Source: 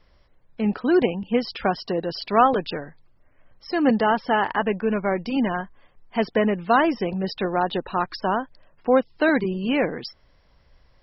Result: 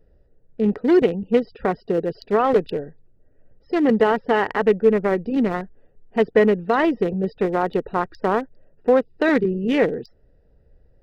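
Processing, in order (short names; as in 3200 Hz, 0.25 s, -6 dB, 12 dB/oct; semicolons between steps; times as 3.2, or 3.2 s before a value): Wiener smoothing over 41 samples; limiter -13 dBFS, peak gain reduction 9 dB; high shelf 4600 Hz +6.5 dB; small resonant body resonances 440/1900 Hz, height 9 dB, ringing for 30 ms; gain +2.5 dB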